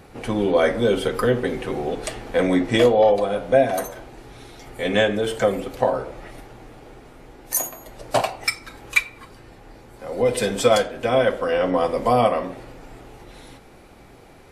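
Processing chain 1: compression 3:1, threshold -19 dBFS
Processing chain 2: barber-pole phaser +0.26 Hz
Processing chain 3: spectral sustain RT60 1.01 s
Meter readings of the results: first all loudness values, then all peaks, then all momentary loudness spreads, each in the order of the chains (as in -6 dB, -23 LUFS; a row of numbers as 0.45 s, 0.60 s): -24.5 LUFS, -24.5 LUFS, -18.5 LUFS; -7.5 dBFS, -7.0 dBFS, -2.0 dBFS; 20 LU, 16 LU, 13 LU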